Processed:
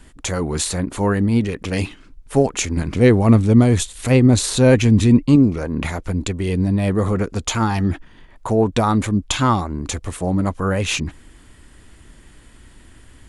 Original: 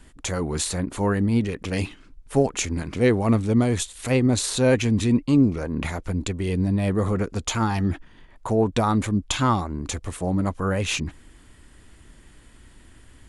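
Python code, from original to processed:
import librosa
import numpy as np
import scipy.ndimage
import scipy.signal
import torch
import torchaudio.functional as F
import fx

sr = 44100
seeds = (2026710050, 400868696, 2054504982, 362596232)

y = fx.low_shelf(x, sr, hz=240.0, db=6.0, at=(2.77, 5.36))
y = y * 10.0 ** (4.0 / 20.0)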